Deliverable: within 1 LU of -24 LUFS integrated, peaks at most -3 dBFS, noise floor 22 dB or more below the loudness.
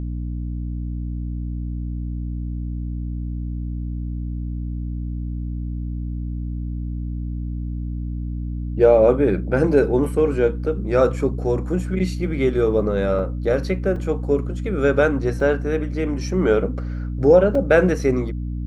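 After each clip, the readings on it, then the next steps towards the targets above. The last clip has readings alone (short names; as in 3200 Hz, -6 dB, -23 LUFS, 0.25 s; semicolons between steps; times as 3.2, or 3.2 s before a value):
dropouts 4; longest dropout 2.8 ms; hum 60 Hz; harmonics up to 300 Hz; hum level -24 dBFS; loudness -22.0 LUFS; peak -3.0 dBFS; loudness target -24.0 LUFS
-> interpolate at 13.19/13.96/15.4/17.55, 2.8 ms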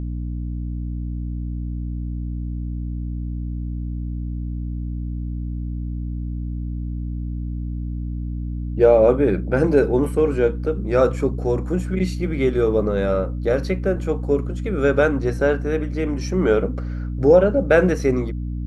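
dropouts 0; hum 60 Hz; harmonics up to 300 Hz; hum level -24 dBFS
-> de-hum 60 Hz, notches 5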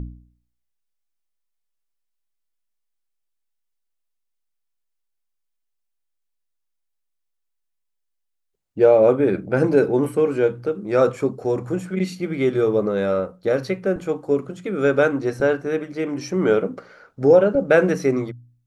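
hum none; loudness -20.0 LUFS; peak -3.5 dBFS; loudness target -24.0 LUFS
-> gain -4 dB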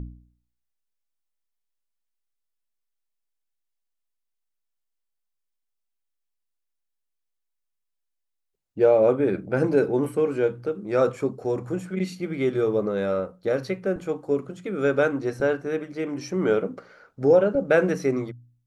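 loudness -24.0 LUFS; peak -7.5 dBFS; noise floor -79 dBFS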